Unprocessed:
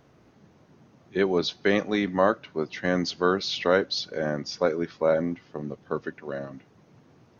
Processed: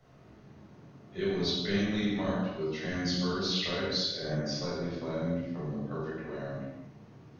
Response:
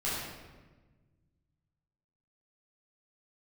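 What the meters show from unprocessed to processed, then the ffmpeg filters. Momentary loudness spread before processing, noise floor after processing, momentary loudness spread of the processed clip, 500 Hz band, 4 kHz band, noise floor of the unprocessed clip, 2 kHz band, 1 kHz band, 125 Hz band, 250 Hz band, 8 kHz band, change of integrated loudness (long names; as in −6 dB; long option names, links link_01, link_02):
12 LU, −55 dBFS, 9 LU, −9.5 dB, −1.0 dB, −59 dBFS, −8.0 dB, −11.0 dB, +1.5 dB, −3.0 dB, can't be measured, −5.5 dB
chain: -filter_complex "[0:a]acrossover=split=190|3000[link_01][link_02][link_03];[link_02]acompressor=threshold=-39dB:ratio=3[link_04];[link_01][link_04][link_03]amix=inputs=3:normalize=0[link_05];[1:a]atrim=start_sample=2205,afade=type=out:start_time=0.39:duration=0.01,atrim=end_sample=17640,asetrate=41013,aresample=44100[link_06];[link_05][link_06]afir=irnorm=-1:irlink=0,volume=-6dB"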